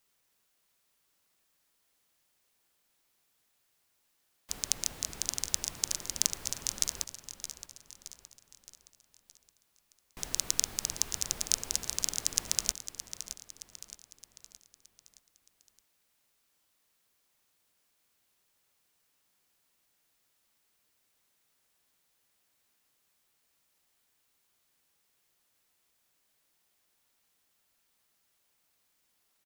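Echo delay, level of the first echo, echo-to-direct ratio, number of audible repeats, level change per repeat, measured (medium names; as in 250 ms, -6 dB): 619 ms, -11.5 dB, -10.5 dB, 4, -6.5 dB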